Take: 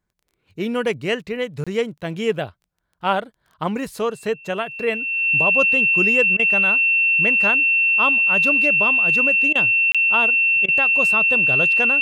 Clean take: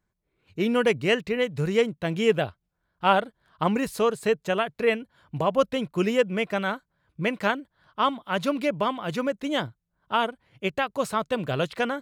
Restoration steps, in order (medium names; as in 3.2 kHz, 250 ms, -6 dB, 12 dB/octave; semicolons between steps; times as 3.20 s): de-click; band-stop 2.7 kHz, Q 30; interpolate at 1.64/9.92 s, 26 ms; interpolate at 6.37/9.53/10.66 s, 22 ms